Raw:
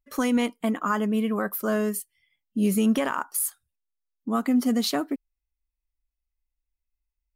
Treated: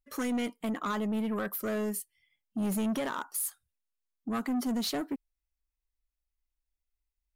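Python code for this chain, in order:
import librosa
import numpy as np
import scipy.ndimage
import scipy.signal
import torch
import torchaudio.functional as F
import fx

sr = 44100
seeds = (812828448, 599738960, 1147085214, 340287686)

y = 10.0 ** (-24.0 / 20.0) * np.tanh(x / 10.0 ** (-24.0 / 20.0))
y = y * 10.0 ** (-3.0 / 20.0)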